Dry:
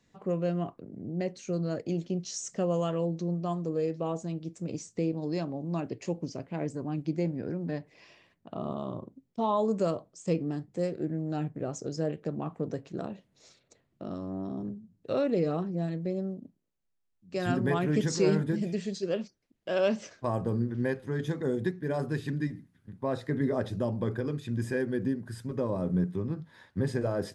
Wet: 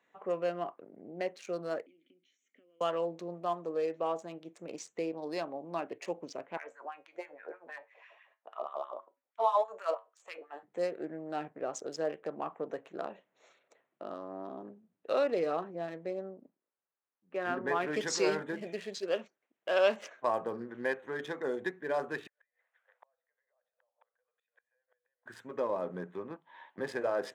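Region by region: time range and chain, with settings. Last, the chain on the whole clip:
1.86–2.81 tone controls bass -7 dB, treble +1 dB + compressor, threshold -40 dBFS + vowel filter i
6.57–10.63 LFO high-pass sine 6.2 Hz 480–1800 Hz + resonator 51 Hz, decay 0.24 s, harmonics odd
16.29–17.8 Gaussian blur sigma 3.2 samples + bell 690 Hz -3.5 dB 0.33 oct
22.27–25.26 rippled Chebyshev high-pass 480 Hz, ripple 3 dB + compressor 2.5:1, threshold -50 dBFS + flipped gate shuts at -45 dBFS, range -35 dB
26.36–26.78 compressor 4:1, threshold -48 dBFS + speaker cabinet 230–5400 Hz, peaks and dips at 460 Hz -6 dB, 930 Hz +9 dB, 1400 Hz -8 dB, 3100 Hz +7 dB
whole clip: Wiener smoothing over 9 samples; HPF 630 Hz 12 dB/oct; high shelf 5800 Hz -6 dB; gain +4.5 dB

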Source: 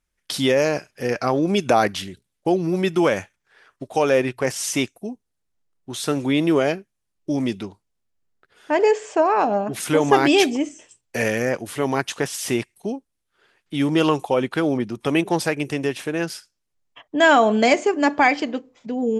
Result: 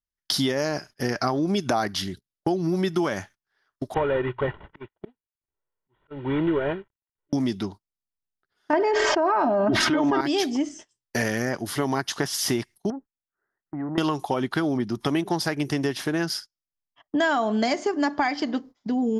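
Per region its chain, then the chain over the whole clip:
3.94–7.33 CVSD 16 kbps + comb 2.1 ms, depth 56% + auto swell 0.371 s
8.73–10.21 LPF 2800 Hz + comb 3.2 ms, depth 69% + fast leveller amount 100%
12.9–13.98 compressor 5:1, threshold -28 dBFS + rippled Chebyshev low-pass 2000 Hz, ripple 3 dB + core saturation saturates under 440 Hz
whole clip: gate -41 dBFS, range -21 dB; thirty-one-band EQ 500 Hz -10 dB, 2500 Hz -10 dB, 5000 Hz +6 dB, 8000 Hz -9 dB; compressor 5:1, threshold -25 dBFS; gain +4 dB

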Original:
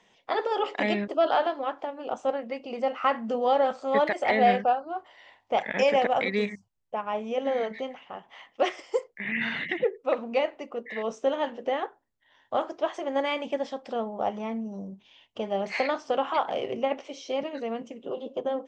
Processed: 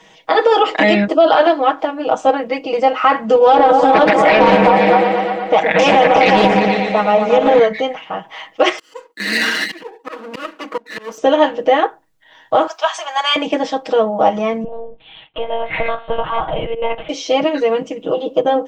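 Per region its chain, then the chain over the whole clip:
3.35–7.59 repeats that get brighter 0.117 s, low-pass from 400 Hz, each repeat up 2 oct, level -3 dB + Doppler distortion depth 0.4 ms
8.78–11.18 minimum comb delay 0.66 ms + elliptic high-pass 220 Hz + auto swell 0.307 s
12.67–13.36 HPF 850 Hz 24 dB/oct + high shelf 5600 Hz +9 dB + notch 2000 Hz, Q 8.2
14.64–17.09 resonant low shelf 350 Hz -11 dB, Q 1.5 + compressor 2:1, threshold -39 dBFS + monotone LPC vocoder at 8 kHz 230 Hz
whole clip: comb 6.3 ms, depth 97%; maximiser +14.5 dB; gain -1 dB

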